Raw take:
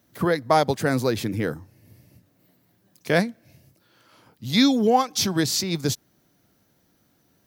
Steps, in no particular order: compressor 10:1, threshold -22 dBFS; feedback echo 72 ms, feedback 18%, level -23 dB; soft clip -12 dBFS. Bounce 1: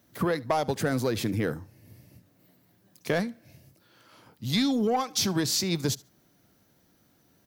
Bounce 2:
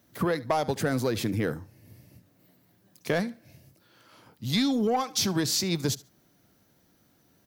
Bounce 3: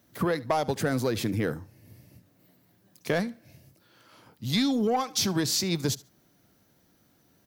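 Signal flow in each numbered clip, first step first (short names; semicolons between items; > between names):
soft clip > compressor > feedback echo; feedback echo > soft clip > compressor; soft clip > feedback echo > compressor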